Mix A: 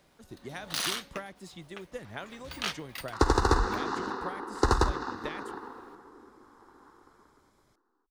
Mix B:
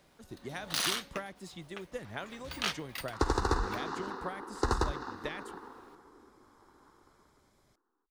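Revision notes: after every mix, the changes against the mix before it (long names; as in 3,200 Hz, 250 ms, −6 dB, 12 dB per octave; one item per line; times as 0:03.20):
second sound −5.5 dB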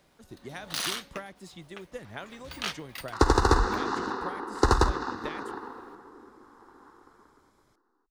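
second sound +8.0 dB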